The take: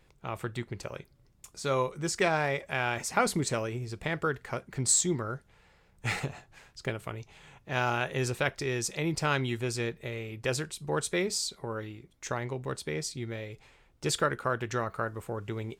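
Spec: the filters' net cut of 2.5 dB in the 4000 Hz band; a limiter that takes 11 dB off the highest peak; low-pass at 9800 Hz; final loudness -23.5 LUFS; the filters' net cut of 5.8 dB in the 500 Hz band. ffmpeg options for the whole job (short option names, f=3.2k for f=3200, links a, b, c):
-af "lowpass=9.8k,equalizer=f=500:t=o:g=-7.5,equalizer=f=4k:t=o:g=-3,volume=13.5dB,alimiter=limit=-11.5dB:level=0:latency=1"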